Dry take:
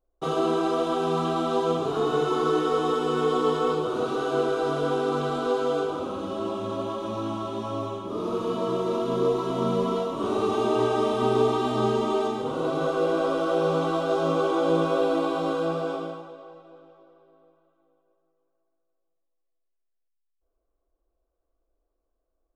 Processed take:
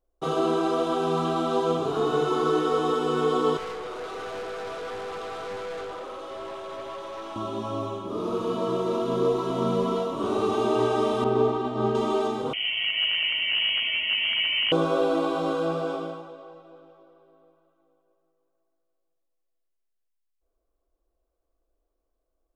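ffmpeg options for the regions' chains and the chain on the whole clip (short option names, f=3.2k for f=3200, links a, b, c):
-filter_complex "[0:a]asettb=1/sr,asplit=3[a][b][c];[a]atrim=end=3.574[d];[b]atrim=start=3.57:end=7.36,asetpts=PTS-STARTPTS,afade=t=in:d=0.004:c=qsin,afade=t=out:st=3.786:d=0.004:c=qsin,highpass=f=420:w=0.5412,highpass=f=420:w=1.3066,aeval=exprs='(tanh(39.8*val(0)+0.2)-tanh(0.2))/39.8':c=same[e];[c]atrim=start=7.356[f];[d][e]acrossfade=d=0.004:c1=hsin:c2=qsin[g];[g][f]acrossfade=d=0.004:c1=qsin:c2=hsin,asettb=1/sr,asplit=3[h][i][j];[h]atrim=end=11.244[k];[i]atrim=start=11.24:end=11.95,asetpts=PTS-STARTPTS,afade=t=in:d=0.004:c=qsin,afade=t=out:st=0.706:d=0.004:c=qsin,agate=range=-33dB:threshold=-23dB:ratio=3:release=100:detection=peak,lowpass=f=1.8k:p=1[l];[j]atrim=start=11.946[m];[k][l]acrossfade=d=0.004:c1=hsin:c2=qsin[n];[n][m]acrossfade=d=0.004:c1=qsin:c2=hsin,asettb=1/sr,asplit=3[o][p][q];[o]atrim=end=12.534[r];[p]atrim=start=12.53:end=14.72,asetpts=PTS-STARTPTS,afade=t=in:d=0.004:c=qsin,afade=t=out:st=2.186:d=0.004:c=qsin,aeval=exprs='0.15*(abs(mod(val(0)/0.15+3,4)-2)-1)':c=same,lowshelf=f=170:g=-11.5,lowpass=f=2.9k:t=q:w=0.5098,lowpass=f=2.9k:t=q:w=0.6013,lowpass=f=2.9k:t=q:w=0.9,lowpass=f=2.9k:t=q:w=2.563,afreqshift=-3400[s];[q]atrim=start=14.716[t];[r][s]acrossfade=d=0.004:c1=hsin:c2=qsin[u];[u][t]acrossfade=d=0.004:c1=qsin:c2=hsin"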